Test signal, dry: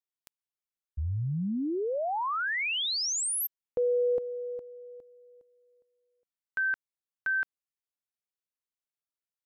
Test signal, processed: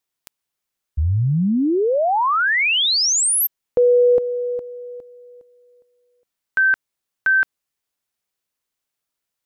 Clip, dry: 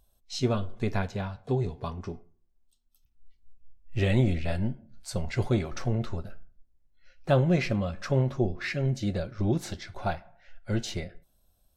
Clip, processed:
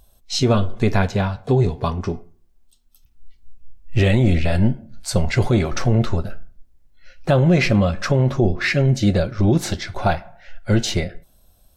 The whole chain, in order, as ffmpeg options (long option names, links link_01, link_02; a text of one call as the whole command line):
ffmpeg -i in.wav -af "alimiter=level_in=19dB:limit=-1dB:release=50:level=0:latency=1,volume=-6.5dB" out.wav